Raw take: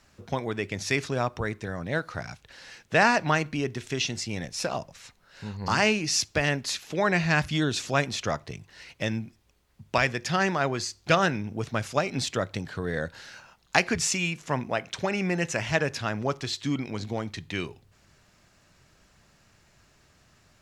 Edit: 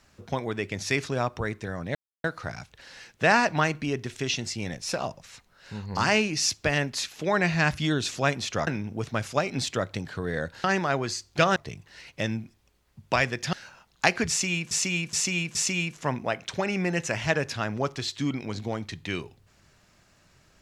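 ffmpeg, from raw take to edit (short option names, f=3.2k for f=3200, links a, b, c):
-filter_complex "[0:a]asplit=9[a][b][c][d][e][f][g][h][i];[a]atrim=end=1.95,asetpts=PTS-STARTPTS,afade=t=out:st=1.946:d=0.004:c=hsin,apad=pad_dur=0.29[j];[b]atrim=start=1.95:end=8.382,asetpts=PTS-STARTPTS,afade=t=in:d=0.004:c=hsin[k];[c]atrim=start=11.268:end=13.242[l];[d]atrim=start=10.348:end=11.272[m];[e]atrim=start=8.378:end=10.352[n];[f]atrim=start=13.238:end=14.422[o];[g]atrim=start=13.998:end=14.422[p];[h]atrim=start=13.998:end=14.422[q];[i]atrim=start=13.998[r];[j][k]concat=n=2:v=0:a=1[s];[s][l]acrossfade=d=0.004:c1=hsin:c2=hsin[t];[t][m]acrossfade=d=0.004:c1=hsin:c2=hsin[u];[u][n]acrossfade=d=0.004:c1=hsin:c2=hsin[v];[v][o]acrossfade=d=0.004:c1=hsin:c2=hsin[w];[w][p]acrossfade=d=0.004:c1=hsin:c2=hsin[x];[x][q]acrossfade=d=0.004:c1=hsin:c2=hsin[y];[y][r]acrossfade=d=0.004:c1=hsin:c2=hsin"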